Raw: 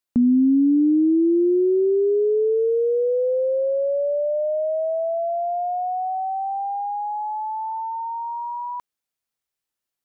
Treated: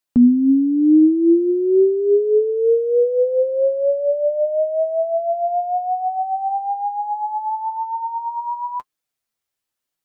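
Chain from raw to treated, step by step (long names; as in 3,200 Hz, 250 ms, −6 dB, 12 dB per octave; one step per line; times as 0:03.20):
flanger 1 Hz, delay 6.1 ms, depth 4.5 ms, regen +33%
level +7 dB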